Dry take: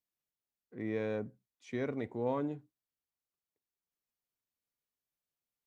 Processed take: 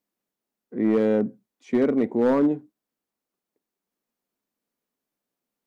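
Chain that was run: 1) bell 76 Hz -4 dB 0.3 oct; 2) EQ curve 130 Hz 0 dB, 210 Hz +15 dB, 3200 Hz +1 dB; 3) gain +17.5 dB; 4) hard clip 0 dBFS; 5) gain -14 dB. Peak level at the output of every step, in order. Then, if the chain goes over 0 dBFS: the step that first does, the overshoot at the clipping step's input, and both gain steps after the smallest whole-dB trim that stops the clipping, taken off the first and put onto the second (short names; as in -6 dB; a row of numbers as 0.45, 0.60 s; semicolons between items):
-21.0, -11.5, +6.0, 0.0, -14.0 dBFS; step 3, 6.0 dB; step 3 +11.5 dB, step 5 -8 dB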